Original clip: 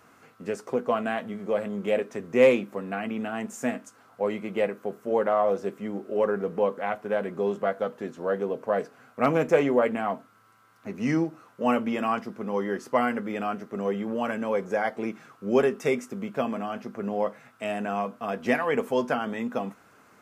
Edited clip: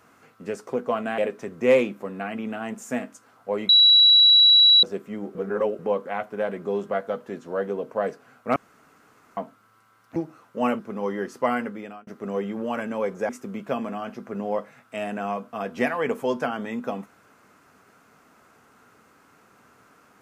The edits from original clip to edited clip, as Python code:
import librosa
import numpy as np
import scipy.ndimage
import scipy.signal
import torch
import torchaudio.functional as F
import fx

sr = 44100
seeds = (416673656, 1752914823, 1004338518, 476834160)

y = fx.edit(x, sr, fx.cut(start_s=1.18, length_s=0.72),
    fx.bleep(start_s=4.41, length_s=1.14, hz=3910.0, db=-11.0),
    fx.reverse_span(start_s=6.07, length_s=0.44),
    fx.room_tone_fill(start_s=9.28, length_s=0.81),
    fx.cut(start_s=10.88, length_s=0.32),
    fx.cut(start_s=11.83, length_s=0.47),
    fx.fade_out_span(start_s=13.11, length_s=0.47),
    fx.cut(start_s=14.8, length_s=1.17), tone=tone)